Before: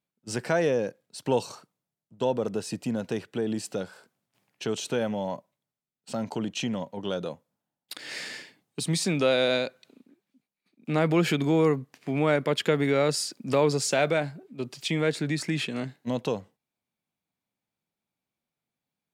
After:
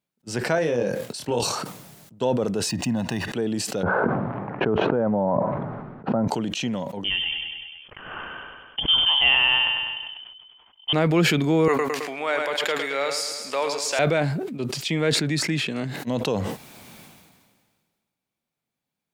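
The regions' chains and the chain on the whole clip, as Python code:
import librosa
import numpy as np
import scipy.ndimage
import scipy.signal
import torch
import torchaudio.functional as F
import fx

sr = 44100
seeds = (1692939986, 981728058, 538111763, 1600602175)

y = fx.chain(x, sr, fx.level_steps(step_db=9),
    fx.doubler(ms=25.0, db=-4.0), at=(0.55, 1.52))
y = fx.chain(y, sr, fx.comb(ms=1.1, depth=0.72),
    fx.resample_linear(factor=3), at=(2.69, 3.32))
y = fx.chain(y, sr, fx.lowpass(hz=1300.0, slope=24),
    fx.env_flatten(amount_pct=100), at=(3.83, 6.28))
y = fx.chain(y, sr, fx.low_shelf(hz=170.0, db=8.5),
    fx.echo_feedback(ms=99, feedback_pct=45, wet_db=-9.5),
    fx.freq_invert(carrier_hz=3300), at=(7.04, 10.93))
y = fx.chain(y, sr, fx.highpass(hz=710.0, slope=12),
    fx.echo_feedback(ms=108, feedback_pct=51, wet_db=-8.5), at=(11.68, 13.99))
y = fx.dynamic_eq(y, sr, hz=9200.0, q=1.7, threshold_db=-48.0, ratio=4.0, max_db=-4)
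y = fx.sustainer(y, sr, db_per_s=34.0)
y = y * 10.0 ** (2.5 / 20.0)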